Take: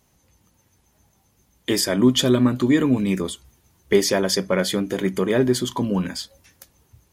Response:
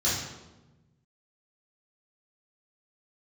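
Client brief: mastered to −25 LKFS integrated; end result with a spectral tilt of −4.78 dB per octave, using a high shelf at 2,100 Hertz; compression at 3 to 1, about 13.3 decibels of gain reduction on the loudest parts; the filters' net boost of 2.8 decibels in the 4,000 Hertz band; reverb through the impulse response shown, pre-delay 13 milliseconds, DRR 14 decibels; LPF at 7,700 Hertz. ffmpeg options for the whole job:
-filter_complex "[0:a]lowpass=7700,highshelf=frequency=2100:gain=-4.5,equalizer=frequency=4000:width_type=o:gain=8.5,acompressor=threshold=-31dB:ratio=3,asplit=2[link_01][link_02];[1:a]atrim=start_sample=2205,adelay=13[link_03];[link_02][link_03]afir=irnorm=-1:irlink=0,volume=-25dB[link_04];[link_01][link_04]amix=inputs=2:normalize=0,volume=6.5dB"

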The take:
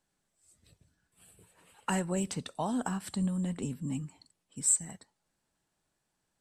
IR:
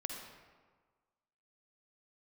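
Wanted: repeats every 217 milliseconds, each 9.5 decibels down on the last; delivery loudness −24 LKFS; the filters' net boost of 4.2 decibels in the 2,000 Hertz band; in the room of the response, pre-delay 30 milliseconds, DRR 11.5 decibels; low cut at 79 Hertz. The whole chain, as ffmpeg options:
-filter_complex "[0:a]highpass=79,equalizer=frequency=2000:width_type=o:gain=5.5,aecho=1:1:217|434|651|868:0.335|0.111|0.0365|0.012,asplit=2[link_01][link_02];[1:a]atrim=start_sample=2205,adelay=30[link_03];[link_02][link_03]afir=irnorm=-1:irlink=0,volume=-11.5dB[link_04];[link_01][link_04]amix=inputs=2:normalize=0,volume=8dB"

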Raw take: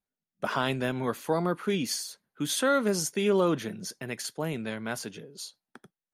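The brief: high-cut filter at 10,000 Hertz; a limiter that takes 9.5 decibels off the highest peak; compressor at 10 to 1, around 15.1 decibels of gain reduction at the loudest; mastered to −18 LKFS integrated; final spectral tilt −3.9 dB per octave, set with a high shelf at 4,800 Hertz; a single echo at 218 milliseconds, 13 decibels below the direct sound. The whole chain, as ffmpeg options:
ffmpeg -i in.wav -af "lowpass=10000,highshelf=frequency=4800:gain=-4.5,acompressor=threshold=-36dB:ratio=10,alimiter=level_in=8.5dB:limit=-24dB:level=0:latency=1,volume=-8.5dB,aecho=1:1:218:0.224,volume=25dB" out.wav

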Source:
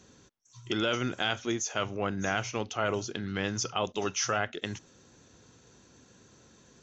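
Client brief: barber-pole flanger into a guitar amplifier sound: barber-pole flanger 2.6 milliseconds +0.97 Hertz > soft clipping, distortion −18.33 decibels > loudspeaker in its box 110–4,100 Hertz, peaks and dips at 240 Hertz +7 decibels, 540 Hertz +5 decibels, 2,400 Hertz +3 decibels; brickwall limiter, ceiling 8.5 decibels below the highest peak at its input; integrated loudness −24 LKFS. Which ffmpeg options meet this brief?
ffmpeg -i in.wav -filter_complex "[0:a]alimiter=limit=-22dB:level=0:latency=1,asplit=2[link_01][link_02];[link_02]adelay=2.6,afreqshift=0.97[link_03];[link_01][link_03]amix=inputs=2:normalize=1,asoftclip=threshold=-29.5dB,highpass=110,equalizer=frequency=240:width_type=q:width=4:gain=7,equalizer=frequency=540:width_type=q:width=4:gain=5,equalizer=frequency=2400:width_type=q:width=4:gain=3,lowpass=frequency=4100:width=0.5412,lowpass=frequency=4100:width=1.3066,volume=14.5dB" out.wav

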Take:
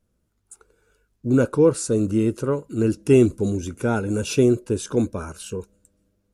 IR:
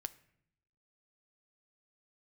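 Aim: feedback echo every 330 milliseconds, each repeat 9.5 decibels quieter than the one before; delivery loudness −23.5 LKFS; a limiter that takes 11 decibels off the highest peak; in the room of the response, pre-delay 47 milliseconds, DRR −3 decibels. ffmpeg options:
-filter_complex "[0:a]alimiter=limit=-15.5dB:level=0:latency=1,aecho=1:1:330|660|990|1320:0.335|0.111|0.0365|0.012,asplit=2[link_01][link_02];[1:a]atrim=start_sample=2205,adelay=47[link_03];[link_02][link_03]afir=irnorm=-1:irlink=0,volume=6dB[link_04];[link_01][link_04]amix=inputs=2:normalize=0,volume=-3dB"

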